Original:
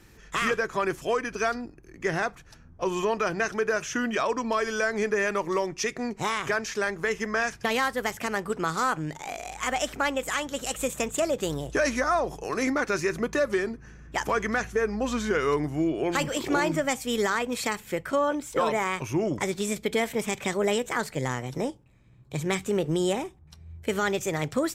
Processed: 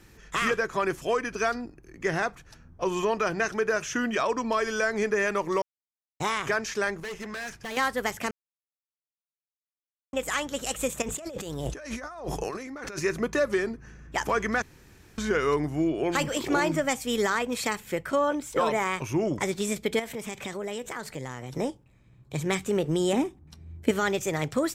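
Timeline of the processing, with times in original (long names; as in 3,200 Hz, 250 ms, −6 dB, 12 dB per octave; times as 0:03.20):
0:05.62–0:06.20: silence
0:07.00–0:07.77: tube saturation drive 33 dB, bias 0.45
0:08.31–0:10.13: silence
0:11.02–0:12.99: compressor whose output falls as the input rises −36 dBFS
0:14.62–0:15.18: fill with room tone
0:19.99–0:21.55: downward compressor 3 to 1, threshold −33 dBFS
0:23.13–0:23.91: parametric band 270 Hz +11.5 dB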